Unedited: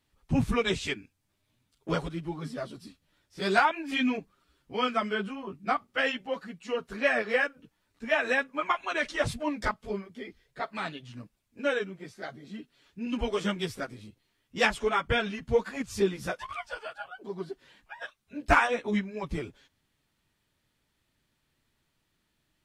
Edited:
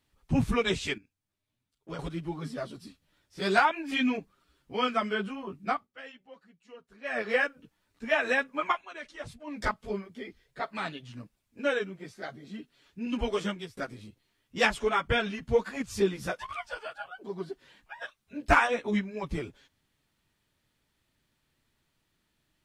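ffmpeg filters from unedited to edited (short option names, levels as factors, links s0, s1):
-filter_complex "[0:a]asplit=8[s0][s1][s2][s3][s4][s5][s6][s7];[s0]atrim=end=0.982[s8];[s1]atrim=start=0.978:end=1.992,asetpts=PTS-STARTPTS,volume=0.299[s9];[s2]atrim=start=1.988:end=5.9,asetpts=PTS-STARTPTS,afade=t=out:st=3.682:d=0.23:silence=0.125893[s10];[s3]atrim=start=5.9:end=7.03,asetpts=PTS-STARTPTS,volume=0.126[s11];[s4]atrim=start=7.03:end=8.84,asetpts=PTS-STARTPTS,afade=t=in:d=0.23:silence=0.125893,afade=t=out:st=1.68:d=0.13:silence=0.223872[s12];[s5]atrim=start=8.84:end=9.47,asetpts=PTS-STARTPTS,volume=0.224[s13];[s6]atrim=start=9.47:end=13.77,asetpts=PTS-STARTPTS,afade=t=in:d=0.13:silence=0.223872,afade=t=out:st=3.89:d=0.41:silence=0.0891251[s14];[s7]atrim=start=13.77,asetpts=PTS-STARTPTS,afade=t=in:d=0.004:c=hsin:silence=0.0891251[s15];[s8][s9]acrossfade=d=0.004:c1=hsin:c2=hsin[s16];[s10][s11][s12][s13][s14][s15]concat=n=6:v=0:a=1[s17];[s16][s17]acrossfade=d=0.004:c1=hsin:c2=hsin"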